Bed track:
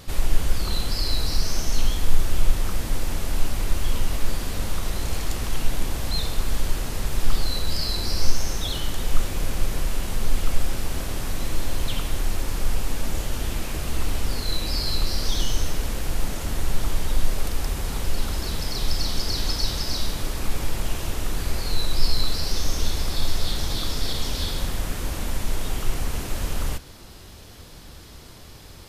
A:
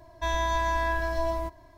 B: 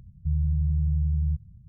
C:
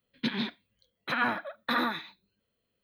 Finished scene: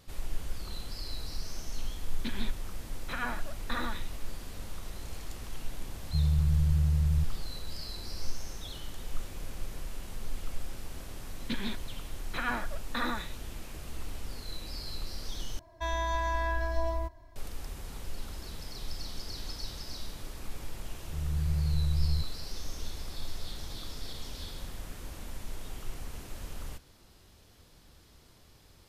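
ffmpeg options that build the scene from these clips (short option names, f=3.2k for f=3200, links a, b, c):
-filter_complex "[3:a]asplit=2[a][b];[2:a]asplit=2[c][d];[0:a]volume=-14.5dB[e];[c]highpass=45[f];[1:a]asubboost=boost=4.5:cutoff=100[g];[d]dynaudnorm=f=120:g=7:m=13dB[h];[e]asplit=2[i][j];[i]atrim=end=15.594[k];[g]atrim=end=1.77,asetpts=PTS-STARTPTS,volume=-5dB[l];[j]atrim=start=17.356[m];[a]atrim=end=2.83,asetpts=PTS-STARTPTS,volume=-7.5dB,afade=t=in:d=0.004:c=hsin,afade=t=out:st=2.826:d=0.004:c=hsin,adelay=2010[n];[f]atrim=end=1.68,asetpts=PTS-STARTPTS,volume=-1dB,afade=t=in:d=0.004:c=hsin,afade=t=out:st=1.676:d=0.004:c=hsin,adelay=5880[o];[b]atrim=end=2.83,asetpts=PTS-STARTPTS,volume=-5dB,afade=t=in:d=0.004:c=hsin,afade=t=out:st=2.826:d=0.004:c=hsin,adelay=11260[p];[h]atrim=end=1.68,asetpts=PTS-STARTPTS,volume=-17dB,afade=t=in:d=0.004:c=hsin,afade=t=out:st=1.676:d=0.004:c=hsin,adelay=20860[q];[k][l]acrossfade=d=0.004:c1=hsin:c2=hsin[r];[r][m]acrossfade=d=0.004:c1=hsin:c2=hsin[s];[s][n][o][p][q]amix=inputs=5:normalize=0"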